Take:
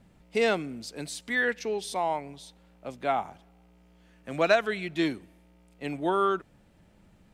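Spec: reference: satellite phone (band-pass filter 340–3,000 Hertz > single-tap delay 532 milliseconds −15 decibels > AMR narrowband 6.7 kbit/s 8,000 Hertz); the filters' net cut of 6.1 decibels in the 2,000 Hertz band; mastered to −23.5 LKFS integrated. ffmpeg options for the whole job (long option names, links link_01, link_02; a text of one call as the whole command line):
ffmpeg -i in.wav -af "highpass=340,lowpass=3000,equalizer=frequency=2000:width_type=o:gain=-7,aecho=1:1:532:0.178,volume=8.5dB" -ar 8000 -c:a libopencore_amrnb -b:a 6700 out.amr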